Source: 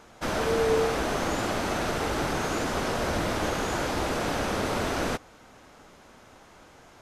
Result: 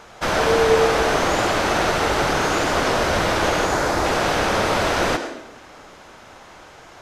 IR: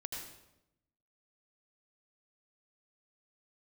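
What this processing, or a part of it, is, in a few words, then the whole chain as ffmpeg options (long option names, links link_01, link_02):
filtered reverb send: -filter_complex "[0:a]asettb=1/sr,asplit=3[link_01][link_02][link_03];[link_01]atrim=end=3.654[link_04];[link_02]atrim=start=3.65:end=4.05,asetpts=PTS-STARTPTS,afade=type=in:duration=0.004:curve=qsin,afade=type=out:start_time=0.396:duration=0.004:curve=qsin,equalizer=frequency=3000:width_type=o:width=0.77:gain=-7[link_05];[link_03]atrim=start=4.046[link_06];[link_04][link_05]acrossfade=duration=0.004:curve1=hsin:curve2=qsin[link_07];[link_07][link_06]acrossfade=duration=0.004:curve1=qsin:curve2=hsin,asplit=2[link_08][link_09];[link_09]highpass=frequency=250:width=0.5412,highpass=frequency=250:width=1.3066,lowpass=7600[link_10];[1:a]atrim=start_sample=2205[link_11];[link_10][link_11]afir=irnorm=-1:irlink=0,volume=-0.5dB[link_12];[link_08][link_12]amix=inputs=2:normalize=0,volume=5.5dB"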